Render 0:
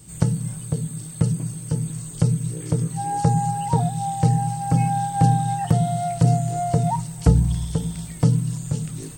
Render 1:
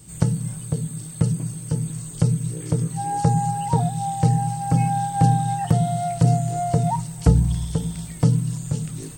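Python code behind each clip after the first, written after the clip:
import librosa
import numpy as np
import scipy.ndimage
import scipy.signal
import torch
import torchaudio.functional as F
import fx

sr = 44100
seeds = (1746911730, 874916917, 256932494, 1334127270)

y = x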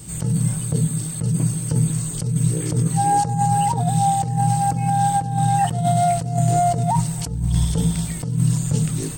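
y = fx.over_compress(x, sr, threshold_db=-24.0, ratio=-1.0)
y = F.gain(torch.from_numpy(y), 5.0).numpy()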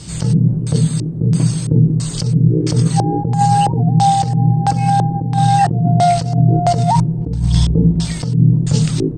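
y = fx.filter_lfo_lowpass(x, sr, shape='square', hz=1.5, low_hz=360.0, high_hz=5100.0, q=2.5)
y = F.gain(torch.from_numpy(y), 6.0).numpy()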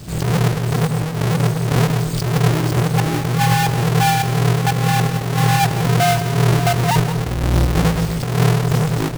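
y = fx.halfwave_hold(x, sr)
y = fx.recorder_agc(y, sr, target_db=-9.5, rise_db_per_s=24.0, max_gain_db=30)
y = y + 10.0 ** (-12.5 / 20.0) * np.pad(y, (int(172 * sr / 1000.0), 0))[:len(y)]
y = F.gain(torch.from_numpy(y), -7.5).numpy()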